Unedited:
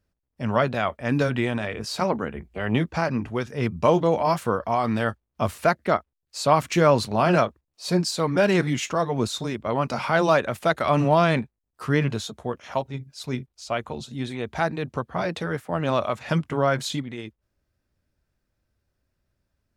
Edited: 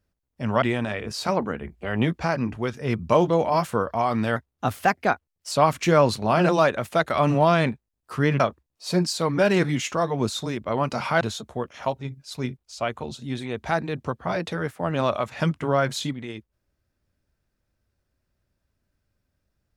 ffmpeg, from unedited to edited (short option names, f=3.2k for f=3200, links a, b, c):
-filter_complex "[0:a]asplit=7[a][b][c][d][e][f][g];[a]atrim=end=0.622[h];[b]atrim=start=1.348:end=5.094[i];[c]atrim=start=5.09:end=6.41,asetpts=PTS-STARTPTS,asetrate=50274,aresample=44100,atrim=end_sample=51063,asetpts=PTS-STARTPTS[j];[d]atrim=start=6.406:end=7.382[k];[e]atrim=start=10.188:end=12.102[l];[f]atrim=start=7.378:end=10.192[m];[g]atrim=start=12.098[n];[h][i]acrossfade=d=0.004:c1=hsin:c2=hsin[o];[o][j]acrossfade=d=0.004:c1=hsin:c2=hsin[p];[p][k]acrossfade=d=0.004:c1=hsin:c2=hsin[q];[q][l]acrossfade=d=0.004:c1=hsin:c2=hsin[r];[r][m]acrossfade=d=0.004:c1=hsin:c2=hsin[s];[s][n]acrossfade=d=0.004:c1=hsin:c2=hsin"